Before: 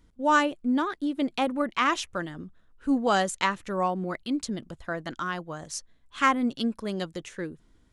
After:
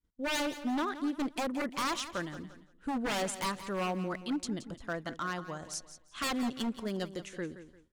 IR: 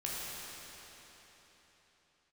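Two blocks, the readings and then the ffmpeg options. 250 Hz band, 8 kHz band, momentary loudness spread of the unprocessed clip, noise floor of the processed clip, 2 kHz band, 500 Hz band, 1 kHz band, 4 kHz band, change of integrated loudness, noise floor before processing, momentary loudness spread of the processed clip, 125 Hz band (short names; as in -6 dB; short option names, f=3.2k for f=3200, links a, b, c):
-6.5 dB, -2.5 dB, 14 LU, -63 dBFS, -8.0 dB, -6.5 dB, -9.5 dB, -3.5 dB, -7.0 dB, -62 dBFS, 9 LU, -4.0 dB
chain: -af "aeval=exprs='0.0708*(abs(mod(val(0)/0.0708+3,4)-2)-1)':c=same,aecho=1:1:173|346|519|692:0.224|0.0828|0.0306|0.0113,agate=range=-33dB:threshold=-49dB:ratio=3:detection=peak,volume=-4dB"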